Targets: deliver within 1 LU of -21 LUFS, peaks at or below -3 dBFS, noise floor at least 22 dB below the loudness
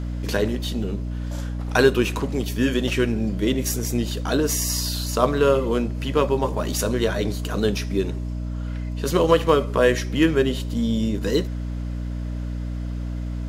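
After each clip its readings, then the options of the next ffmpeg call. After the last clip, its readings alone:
hum 60 Hz; harmonics up to 300 Hz; hum level -25 dBFS; loudness -23.0 LUFS; peak -3.0 dBFS; loudness target -21.0 LUFS
-> -af "bandreject=f=60:t=h:w=4,bandreject=f=120:t=h:w=4,bandreject=f=180:t=h:w=4,bandreject=f=240:t=h:w=4,bandreject=f=300:t=h:w=4"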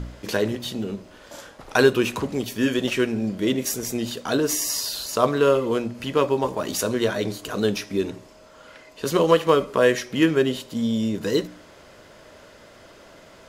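hum none; loudness -23.0 LUFS; peak -3.0 dBFS; loudness target -21.0 LUFS
-> -af "volume=2dB,alimiter=limit=-3dB:level=0:latency=1"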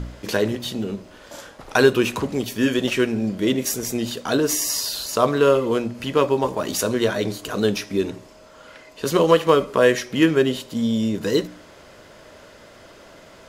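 loudness -21.0 LUFS; peak -3.0 dBFS; noise floor -47 dBFS

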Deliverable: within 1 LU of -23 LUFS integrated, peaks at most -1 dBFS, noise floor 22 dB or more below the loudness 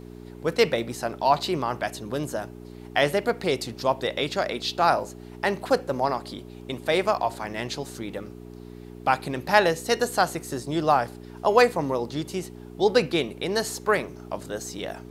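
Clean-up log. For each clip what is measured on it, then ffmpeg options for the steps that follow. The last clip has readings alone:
hum 60 Hz; harmonics up to 420 Hz; hum level -39 dBFS; loudness -25.5 LUFS; peak -4.0 dBFS; loudness target -23.0 LUFS
-> -af "bandreject=f=60:t=h:w=4,bandreject=f=120:t=h:w=4,bandreject=f=180:t=h:w=4,bandreject=f=240:t=h:w=4,bandreject=f=300:t=h:w=4,bandreject=f=360:t=h:w=4,bandreject=f=420:t=h:w=4"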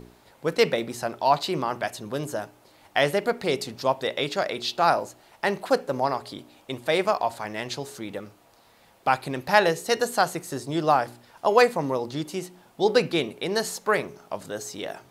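hum none; loudness -25.5 LUFS; peak -4.0 dBFS; loudness target -23.0 LUFS
-> -af "volume=2.5dB"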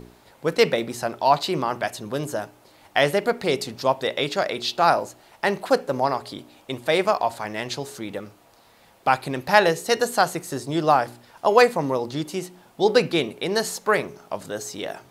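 loudness -23.0 LUFS; peak -1.5 dBFS; noise floor -55 dBFS

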